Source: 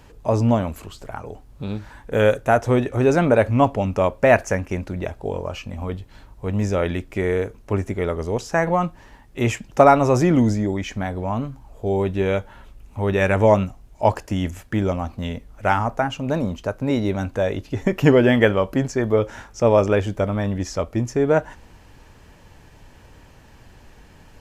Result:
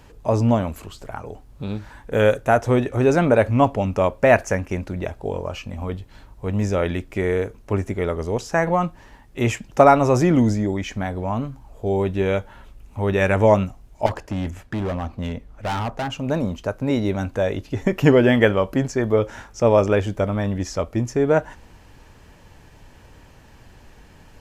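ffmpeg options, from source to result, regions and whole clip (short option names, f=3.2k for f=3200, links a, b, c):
-filter_complex "[0:a]asettb=1/sr,asplit=3[a][b][c];[a]atrim=end=14.064[d];[b]atrim=start=14.06:end=16.1,asetpts=PTS-STARTPTS,afade=t=in:d=0.004:c=qsin,afade=t=out:st=2.036:d=0.004:c=qsin,aemphasis=mode=reproduction:type=cd,asoftclip=type=hard:threshold=-22dB[e];[c]atrim=start=16.096[f];[d][e]acrossfade=d=0.004:c1=hsin:c2=qsin[g];[g][f]acrossfade=d=0.004:c1=qsin:c2=hsin"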